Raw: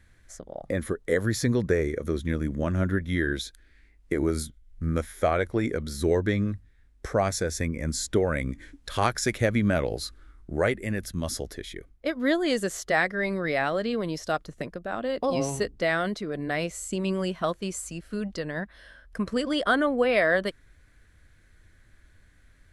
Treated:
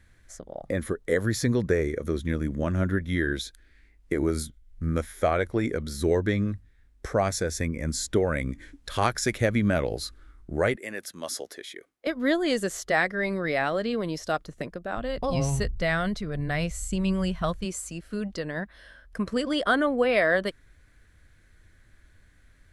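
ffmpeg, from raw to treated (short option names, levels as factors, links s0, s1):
-filter_complex "[0:a]asettb=1/sr,asplit=3[s0][s1][s2];[s0]atrim=end=10.764[s3];[s1]atrim=start=10.76:end=12.07,asetpts=PTS-STARTPTS,afade=t=in:d=0.004:c=qsin,afade=t=out:st=1.306:d=0.004:c=qsin,highpass=420[s4];[s2]atrim=start=12.066[s5];[s3][s4]acrossfade=d=0.004:c1=hsin:c2=qsin[s6];[s6][s5]acrossfade=d=0.004:c1=qsin:c2=hsin,asplit=3[s7][s8][s9];[s7]afade=t=out:st=14.96:d=0.02[s10];[s8]asubboost=boost=9.5:cutoff=100,afade=t=in:st=14.96:d=0.02,afade=t=out:st=17.64:d=0.02[s11];[s9]afade=t=in:st=17.64:d=0.02[s12];[s10][s11][s12]amix=inputs=3:normalize=0"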